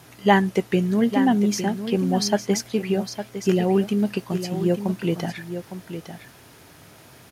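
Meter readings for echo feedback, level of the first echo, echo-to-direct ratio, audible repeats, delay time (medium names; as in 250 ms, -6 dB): no regular repeats, -10.0 dB, -10.0 dB, 1, 858 ms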